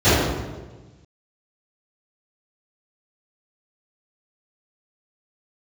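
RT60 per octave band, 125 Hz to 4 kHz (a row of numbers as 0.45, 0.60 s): 1.7, 1.5, 1.4, 1.2, 1.0, 0.90 s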